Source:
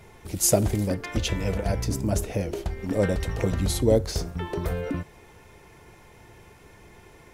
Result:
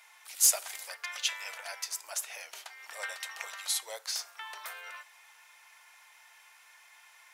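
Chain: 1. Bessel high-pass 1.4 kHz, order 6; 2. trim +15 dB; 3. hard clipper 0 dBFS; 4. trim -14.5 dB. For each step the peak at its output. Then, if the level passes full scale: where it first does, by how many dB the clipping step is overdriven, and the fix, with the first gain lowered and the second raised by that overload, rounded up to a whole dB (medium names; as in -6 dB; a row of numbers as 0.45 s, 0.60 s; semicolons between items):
-10.0 dBFS, +5.0 dBFS, 0.0 dBFS, -14.5 dBFS; step 2, 5.0 dB; step 2 +10 dB, step 4 -9.5 dB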